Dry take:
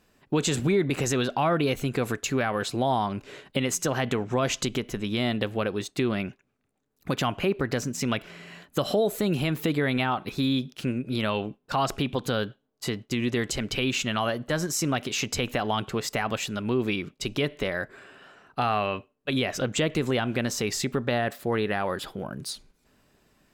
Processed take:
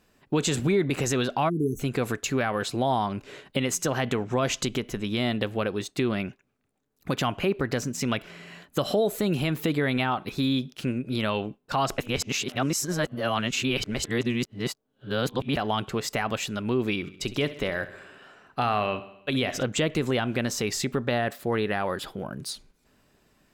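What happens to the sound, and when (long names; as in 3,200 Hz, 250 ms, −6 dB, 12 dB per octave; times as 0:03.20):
0:01.49–0:01.79: time-frequency box erased 460–5,700 Hz
0:11.98–0:15.57: reverse
0:16.94–0:19.63: repeating echo 66 ms, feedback 60%, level −15.5 dB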